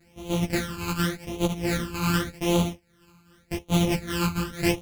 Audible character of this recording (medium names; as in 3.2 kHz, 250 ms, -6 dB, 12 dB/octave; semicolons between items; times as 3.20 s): a buzz of ramps at a fixed pitch in blocks of 256 samples; phasing stages 12, 0.87 Hz, lowest notch 590–1700 Hz; tremolo triangle 2.4 Hz, depth 75%; a shimmering, thickened sound